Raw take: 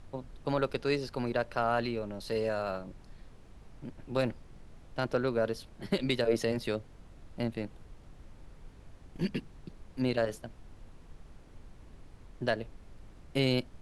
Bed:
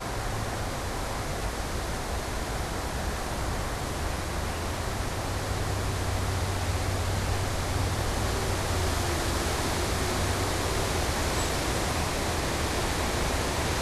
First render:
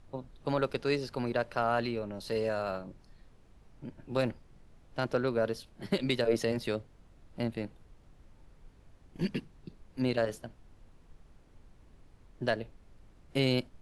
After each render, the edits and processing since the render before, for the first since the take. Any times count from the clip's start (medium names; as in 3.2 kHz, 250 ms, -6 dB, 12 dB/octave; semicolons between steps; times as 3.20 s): noise print and reduce 6 dB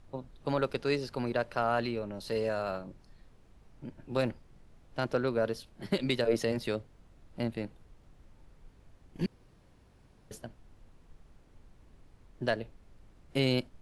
9.26–10.31 s: room tone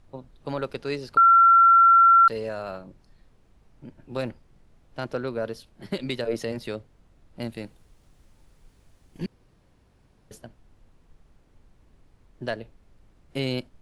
1.17–2.28 s: bleep 1.36 kHz -11.5 dBFS; 7.41–9.19 s: treble shelf 3.8 kHz +10.5 dB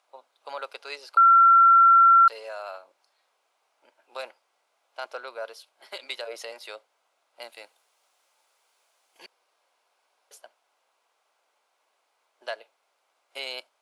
high-pass 640 Hz 24 dB/octave; band-stop 1.8 kHz, Q 7.8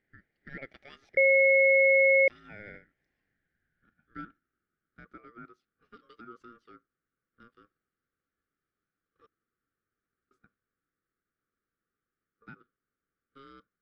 band-pass sweep 1.1 kHz -> 330 Hz, 3.05–5.06 s; ring modulator 820 Hz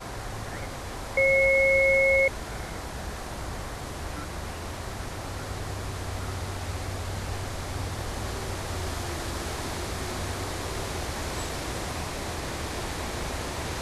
add bed -4.5 dB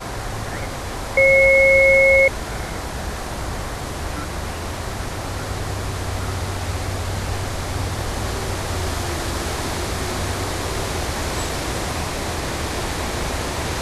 trim +8 dB